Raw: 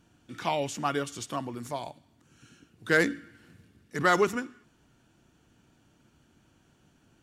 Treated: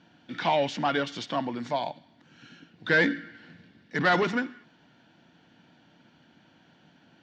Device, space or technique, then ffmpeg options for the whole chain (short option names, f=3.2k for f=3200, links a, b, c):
overdrive pedal into a guitar cabinet: -filter_complex "[0:a]asplit=2[a][b];[b]highpass=f=720:p=1,volume=17dB,asoftclip=type=tanh:threshold=-11.5dB[c];[a][c]amix=inputs=2:normalize=0,lowpass=f=4.6k:p=1,volume=-6dB,highpass=90,equalizer=f=170:t=q:w=4:g=7,equalizer=f=250:t=q:w=4:g=3,equalizer=f=400:t=q:w=4:g=-6,equalizer=f=1.2k:t=q:w=4:g=-10,equalizer=f=2.6k:t=q:w=4:g=-5,lowpass=f=4.5k:w=0.5412,lowpass=f=4.5k:w=1.3066"